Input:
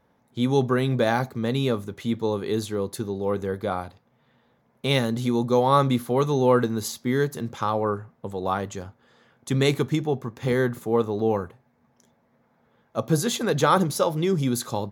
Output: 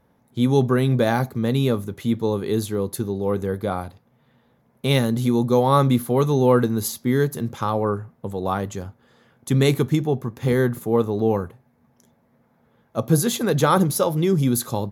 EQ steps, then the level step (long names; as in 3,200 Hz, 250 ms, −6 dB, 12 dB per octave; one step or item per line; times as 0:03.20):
low-shelf EQ 350 Hz +6 dB
parametric band 12,000 Hz +10.5 dB 0.53 octaves
0.0 dB